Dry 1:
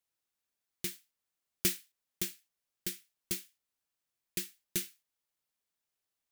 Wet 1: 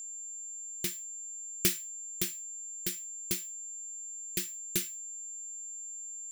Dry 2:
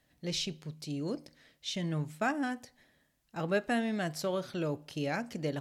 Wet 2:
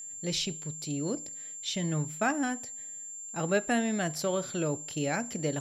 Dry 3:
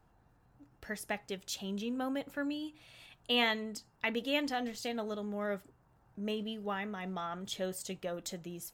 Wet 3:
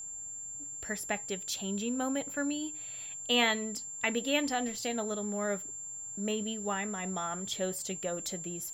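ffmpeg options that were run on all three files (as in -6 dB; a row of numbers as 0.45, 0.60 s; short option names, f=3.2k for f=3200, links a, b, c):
-af "acontrast=32,aeval=exprs='val(0)+0.0141*sin(2*PI*7300*n/s)':c=same,volume=-2.5dB"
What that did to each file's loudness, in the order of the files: +2.0, +3.0, +3.5 LU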